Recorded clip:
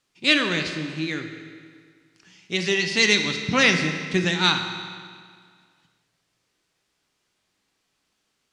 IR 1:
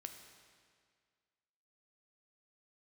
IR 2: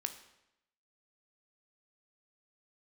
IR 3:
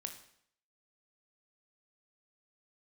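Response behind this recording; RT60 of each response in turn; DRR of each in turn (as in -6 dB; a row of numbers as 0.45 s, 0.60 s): 1; 1.9 s, 0.85 s, 0.65 s; 5.0 dB, 7.5 dB, 5.5 dB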